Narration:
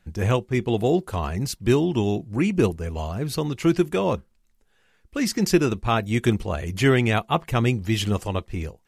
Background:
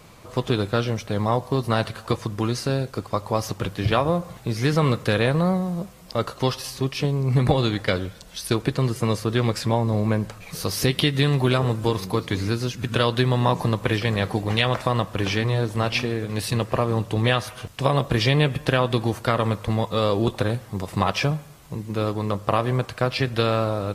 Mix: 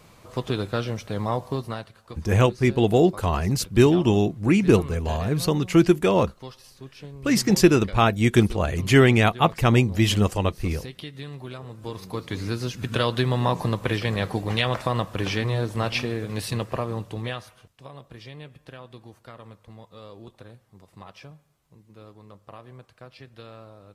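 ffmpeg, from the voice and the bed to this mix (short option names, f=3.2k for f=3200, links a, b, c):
-filter_complex "[0:a]adelay=2100,volume=3dB[a];[1:a]volume=11dB,afade=t=out:st=1.5:d=0.36:silence=0.211349,afade=t=in:st=11.7:d=1.01:silence=0.177828,afade=t=out:st=16.29:d=1.45:silence=0.1[b];[a][b]amix=inputs=2:normalize=0"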